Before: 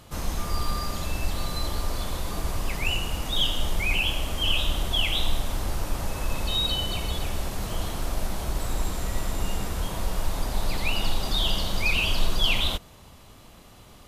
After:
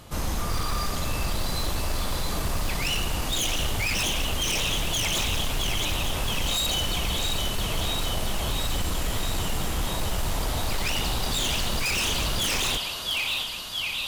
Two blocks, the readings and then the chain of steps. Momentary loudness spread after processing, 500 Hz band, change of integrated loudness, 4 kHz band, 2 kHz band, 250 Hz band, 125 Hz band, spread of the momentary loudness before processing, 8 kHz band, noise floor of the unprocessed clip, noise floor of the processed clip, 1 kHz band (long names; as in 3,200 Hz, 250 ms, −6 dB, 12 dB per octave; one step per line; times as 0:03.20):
5 LU, +1.5 dB, +1.5 dB, +1.5 dB, +1.5 dB, +1.5 dB, +1.0 dB, 8 LU, +7.5 dB, −50 dBFS, −31 dBFS, +2.0 dB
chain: feedback echo with a high-pass in the loop 668 ms, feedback 76%, high-pass 870 Hz, level −5.5 dB
wave folding −23.5 dBFS
level +3 dB